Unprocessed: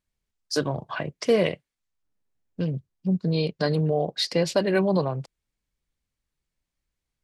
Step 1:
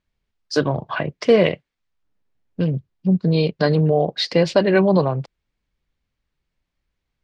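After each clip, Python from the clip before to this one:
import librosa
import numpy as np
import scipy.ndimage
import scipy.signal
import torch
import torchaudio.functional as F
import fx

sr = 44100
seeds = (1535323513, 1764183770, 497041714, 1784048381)

y = scipy.signal.sosfilt(scipy.signal.butter(2, 4100.0, 'lowpass', fs=sr, output='sos'), x)
y = y * librosa.db_to_amplitude(6.5)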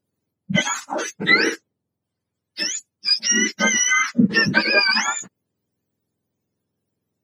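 y = fx.octave_mirror(x, sr, pivot_hz=960.0)
y = y * librosa.db_to_amplitude(2.5)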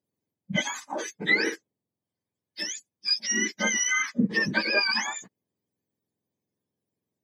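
y = fx.notch_comb(x, sr, f0_hz=1400.0)
y = y * librosa.db_to_amplitude(-6.5)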